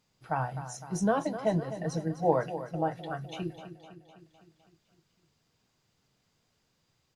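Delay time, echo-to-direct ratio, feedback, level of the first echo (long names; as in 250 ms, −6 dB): 254 ms, −10.0 dB, 59%, −12.0 dB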